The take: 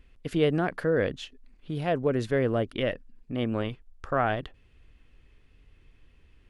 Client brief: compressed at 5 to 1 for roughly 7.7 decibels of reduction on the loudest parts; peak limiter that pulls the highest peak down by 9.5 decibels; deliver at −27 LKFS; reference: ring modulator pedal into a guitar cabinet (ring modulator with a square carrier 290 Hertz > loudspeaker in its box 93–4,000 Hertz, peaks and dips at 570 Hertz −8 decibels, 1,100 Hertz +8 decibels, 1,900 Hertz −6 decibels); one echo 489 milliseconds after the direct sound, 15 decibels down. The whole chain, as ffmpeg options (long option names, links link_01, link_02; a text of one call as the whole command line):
ffmpeg -i in.wav -af "acompressor=threshold=-27dB:ratio=5,alimiter=level_in=1.5dB:limit=-24dB:level=0:latency=1,volume=-1.5dB,aecho=1:1:489:0.178,aeval=exprs='val(0)*sgn(sin(2*PI*290*n/s))':channel_layout=same,highpass=93,equalizer=frequency=570:width_type=q:width=4:gain=-8,equalizer=frequency=1100:width_type=q:width=4:gain=8,equalizer=frequency=1900:width_type=q:width=4:gain=-6,lowpass=frequency=4000:width=0.5412,lowpass=frequency=4000:width=1.3066,volume=10dB" out.wav